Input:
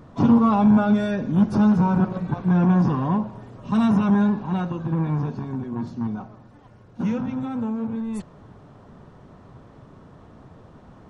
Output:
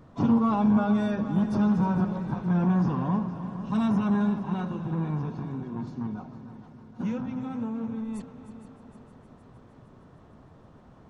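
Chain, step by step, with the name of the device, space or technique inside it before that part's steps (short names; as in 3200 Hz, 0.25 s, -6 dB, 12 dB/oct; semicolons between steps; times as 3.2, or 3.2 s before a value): multi-head tape echo (multi-head echo 0.154 s, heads second and third, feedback 59%, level -14 dB; wow and flutter 21 cents); gain -6 dB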